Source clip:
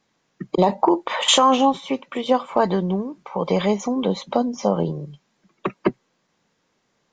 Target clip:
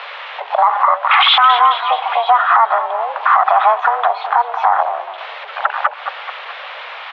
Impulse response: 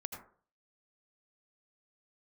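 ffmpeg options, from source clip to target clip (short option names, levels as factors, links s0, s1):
-filter_complex "[0:a]aeval=exprs='val(0)+0.5*0.0596*sgn(val(0))':c=same,afwtdn=0.0631,acompressor=threshold=0.0794:ratio=4,asplit=2[s0][s1];[s1]asplit=5[s2][s3][s4][s5][s6];[s2]adelay=213,afreqshift=-38,volume=0.2[s7];[s3]adelay=426,afreqshift=-76,volume=0.106[s8];[s4]adelay=639,afreqshift=-114,volume=0.0562[s9];[s5]adelay=852,afreqshift=-152,volume=0.0299[s10];[s6]adelay=1065,afreqshift=-190,volume=0.0157[s11];[s7][s8][s9][s10][s11]amix=inputs=5:normalize=0[s12];[s0][s12]amix=inputs=2:normalize=0,highpass=f=580:t=q:w=0.5412,highpass=f=580:t=q:w=1.307,lowpass=f=3200:t=q:w=0.5176,lowpass=f=3200:t=q:w=0.7071,lowpass=f=3200:t=q:w=1.932,afreqshift=230,alimiter=level_in=11.9:limit=0.891:release=50:level=0:latency=1,volume=0.891"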